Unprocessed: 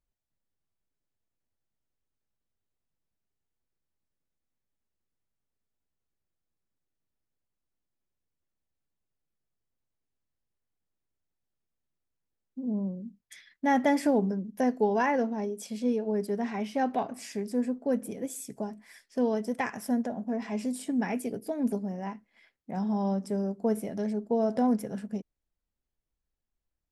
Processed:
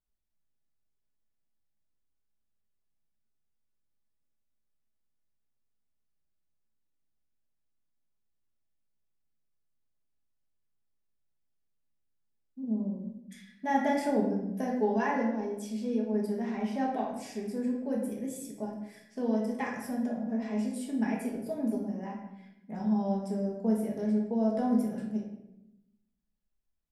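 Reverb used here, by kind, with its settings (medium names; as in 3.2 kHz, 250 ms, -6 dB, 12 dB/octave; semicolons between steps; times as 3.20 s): simulated room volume 270 m³, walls mixed, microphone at 1.4 m; trim -7.5 dB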